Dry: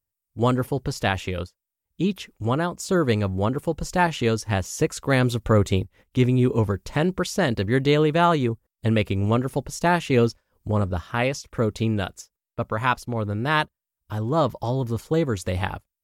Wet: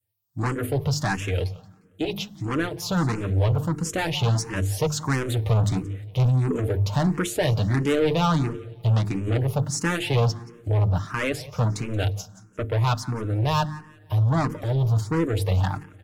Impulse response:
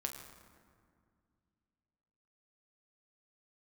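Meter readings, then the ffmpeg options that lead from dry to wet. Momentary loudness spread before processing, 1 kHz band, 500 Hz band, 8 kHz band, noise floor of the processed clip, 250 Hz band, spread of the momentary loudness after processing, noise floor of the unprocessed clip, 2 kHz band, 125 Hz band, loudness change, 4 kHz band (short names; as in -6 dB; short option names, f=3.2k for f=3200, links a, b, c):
9 LU, -3.5 dB, -4.0 dB, +2.0 dB, -51 dBFS, -3.0 dB, 7 LU, under -85 dBFS, -3.5 dB, +3.0 dB, -1.0 dB, 0.0 dB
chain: -filter_complex "[0:a]highpass=f=76:w=0.5412,highpass=f=76:w=1.3066,equalizer=f=99:w=3.1:g=12.5,bandreject=f=50:t=h:w=6,bandreject=f=100:t=h:w=6,bandreject=f=150:t=h:w=6,bandreject=f=200:t=h:w=6,bandreject=f=250:t=h:w=6,bandreject=f=300:t=h:w=6,bandreject=f=350:t=h:w=6,bandreject=f=400:t=h:w=6,bandreject=f=450:t=h:w=6,aecho=1:1:6.6:0.48,adynamicequalizer=threshold=0.0251:dfrequency=1100:dqfactor=0.85:tfrequency=1100:tqfactor=0.85:attack=5:release=100:ratio=0.375:range=2.5:mode=cutabove:tftype=bell,acontrast=87,asoftclip=type=tanh:threshold=-15dB,aecho=1:1:177|354|531:0.1|0.032|0.0102,asplit=2[a][b];[1:a]atrim=start_sample=2205[c];[b][c]afir=irnorm=-1:irlink=0,volume=-16dB[d];[a][d]amix=inputs=2:normalize=0,asplit=2[e][f];[f]afreqshift=1.5[g];[e][g]amix=inputs=2:normalize=1,volume=-2dB"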